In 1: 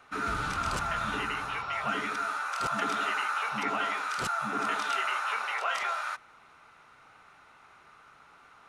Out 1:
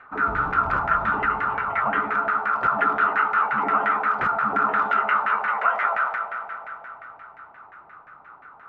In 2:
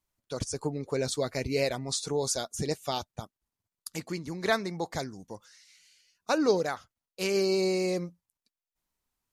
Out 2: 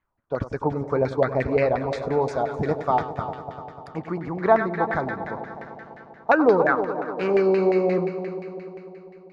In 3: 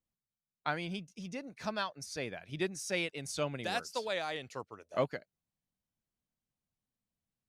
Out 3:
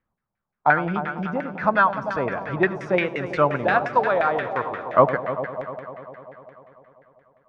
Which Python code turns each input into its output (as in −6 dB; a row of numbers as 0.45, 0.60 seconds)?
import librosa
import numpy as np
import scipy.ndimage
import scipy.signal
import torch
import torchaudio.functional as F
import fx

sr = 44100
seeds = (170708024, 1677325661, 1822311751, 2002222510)

y = fx.echo_heads(x, sr, ms=99, heads='first and third', feedback_pct=68, wet_db=-12)
y = fx.filter_lfo_lowpass(y, sr, shape='saw_down', hz=5.7, low_hz=730.0, high_hz=1900.0, q=3.1)
y = y * 10.0 ** (-24 / 20.0) / np.sqrt(np.mean(np.square(y)))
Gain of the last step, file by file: +3.0, +5.5, +12.0 decibels